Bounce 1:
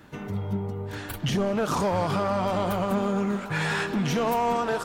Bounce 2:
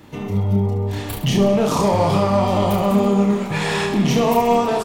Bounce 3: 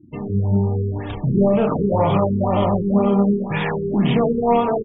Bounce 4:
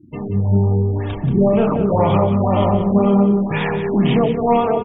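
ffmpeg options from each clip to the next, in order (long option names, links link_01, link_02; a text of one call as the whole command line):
ffmpeg -i in.wav -filter_complex "[0:a]equalizer=frequency=1500:width=3.7:gain=-12,asplit=2[link_01][link_02];[link_02]aecho=0:1:30|72|130.8|213.1|328.4:0.631|0.398|0.251|0.158|0.1[link_03];[link_01][link_03]amix=inputs=2:normalize=0,volume=6dB" out.wav
ffmpeg -i in.wav -af "afftfilt=real='re*gte(hypot(re,im),0.0251)':imag='im*gte(hypot(re,im),0.0251)':win_size=1024:overlap=0.75,equalizer=frequency=7100:width=7:gain=12,afftfilt=real='re*lt(b*sr/1024,440*pow(3800/440,0.5+0.5*sin(2*PI*2*pts/sr)))':imag='im*lt(b*sr/1024,440*pow(3800/440,0.5+0.5*sin(2*PI*2*pts/sr)))':win_size=1024:overlap=0.75" out.wav
ffmpeg -i in.wav -filter_complex "[0:a]asplit=2[link_01][link_02];[link_02]adelay=180.8,volume=-8dB,highshelf=frequency=4000:gain=-4.07[link_03];[link_01][link_03]amix=inputs=2:normalize=0,volume=1.5dB" out.wav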